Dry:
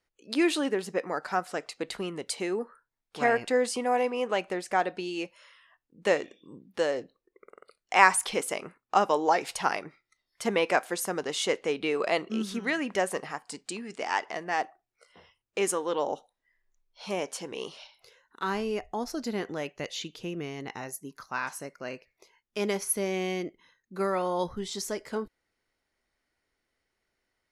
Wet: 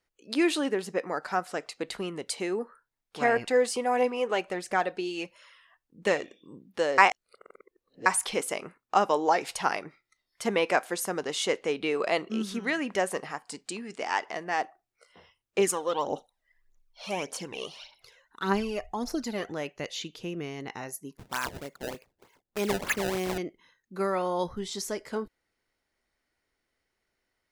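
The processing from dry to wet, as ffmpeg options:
-filter_complex "[0:a]asettb=1/sr,asplit=3[a][b][c];[a]atrim=end=3.364[d];[b]atrim=start=3.36:end=6.23,asetpts=PTS-STARTPTS,afade=t=in:d=0.004:c=qsin,afade=t=out:st=2.866:d=0.004:c=qsin,aphaser=in_gain=1:out_gain=1:delay=2.9:decay=0.34:speed=1.5:type=triangular[e];[c]atrim=start=6.226[f];[d][e]acrossfade=d=0.004:c1=hsin:c2=qsin[g];[g][f]acrossfade=d=0.004:c1=qsin:c2=hsin,asettb=1/sr,asplit=3[h][i][j];[h]atrim=end=15.584[k];[i]atrim=start=15.58:end=19.52,asetpts=PTS-STARTPTS,afade=t=in:d=0.004:c=qsin,afade=t=out:st=3.936:d=0.004:c=qsin,aphaser=in_gain=1:out_gain=1:delay=1.8:decay=0.6:speed=1.7:type=triangular[l];[j]atrim=start=19.516[m];[k][l]acrossfade=d=0.004:c1=hsin:c2=qsin[n];[n][m]acrossfade=d=0.004:c1=qsin:c2=hsin,asettb=1/sr,asplit=3[o][p][q];[o]atrim=end=21.174[r];[p]atrim=start=21.17:end=23.38,asetpts=PTS-STARTPTS,afade=t=in:d=0.004:c=qsin,afade=t=out:st=2.206:d=0.004:c=qsin,acrusher=samples=23:mix=1:aa=0.000001:lfo=1:lforange=36.8:lforate=3.3[s];[q]atrim=start=23.376[t];[r][s]acrossfade=d=0.004:c1=hsin:c2=qsin[u];[u][t]acrossfade=d=0.004:c1=qsin:c2=hsin,asplit=3[v][w][x];[v]atrim=end=6.982[y];[w]atrim=start=6.978:end=8.062,asetpts=PTS-STARTPTS,areverse[z];[x]atrim=start=8.058[aa];[y][z]acrossfade=d=0.004:c1=hsin:c2=hsin[ab];[ab][aa]acrossfade=d=0.004:c1=hsin:c2=hsin"

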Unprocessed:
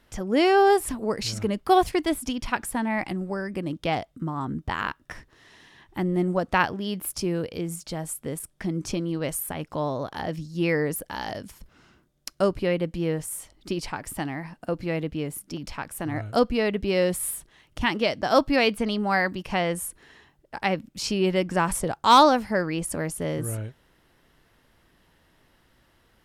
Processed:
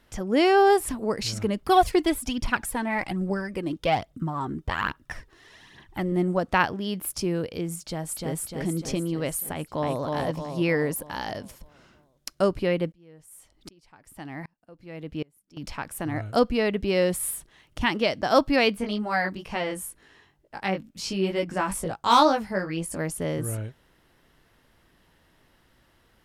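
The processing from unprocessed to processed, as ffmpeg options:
-filter_complex "[0:a]asettb=1/sr,asplit=3[a][b][c];[a]atrim=end=1.624[d];[b]atrim=start=1.62:end=6.12,asetpts=PTS-STARTPTS,afade=t=in:d=0.004:c=qsin,afade=t=out:st=4.496:d=0.004:c=qsin,aphaser=in_gain=1:out_gain=1:delay=3:decay=0.5:speed=1.2:type=triangular[e];[c]atrim=start=6.116[f];[d][e]acrossfade=d=0.004:c1=hsin:c2=qsin[g];[g][f]acrossfade=d=0.004:c1=qsin:c2=hsin,asplit=2[h][i];[i]afade=t=in:st=7.81:d=0.01,afade=t=out:st=8.36:d=0.01,aecho=0:1:300|600|900|1200|1500|1800|2100|2400|2700:0.794328|0.476597|0.285958|0.171575|0.102945|0.061767|0.0370602|0.0222361|0.0133417[j];[h][j]amix=inputs=2:normalize=0,asplit=2[k][l];[l]afade=t=in:st=9.51:d=0.01,afade=t=out:st=10:d=0.01,aecho=0:1:310|620|930|1240|1550|1860|2170:0.794328|0.397164|0.198582|0.099291|0.0496455|0.0248228|0.0124114[m];[k][m]amix=inputs=2:normalize=0,asettb=1/sr,asplit=3[n][o][p];[n]atrim=end=12.924[q];[o]atrim=start=12.92:end=15.57,asetpts=PTS-STARTPTS,afade=t=in:d=0.004:c=qsin,afade=t=out:st=2.646:d=0.004:c=qsin,aeval=exprs='val(0)*pow(10,-32*if(lt(mod(-1.3*n/s,1),2*abs(-1.3)/1000),1-mod(-1.3*n/s,1)/(2*abs(-1.3)/1000),(mod(-1.3*n/s,1)-2*abs(-1.3)/1000)/(1-2*abs(-1.3)/1000))/20)':c=same[r];[p]atrim=start=15.566[s];[q][r]acrossfade=d=0.004:c1=hsin:c2=qsin[t];[t][s]acrossfade=d=0.004:c1=qsin:c2=hsin,asplit=3[u][v][w];[u]afade=t=out:st=18.72:d=0.02[x];[v]flanger=delay=18:depth=3.1:speed=2.1,afade=t=in:st=18.72:d=0.02,afade=t=out:st=22.98:d=0.02[y];[w]afade=t=in:st=22.98:d=0.02[z];[x][y][z]amix=inputs=3:normalize=0"

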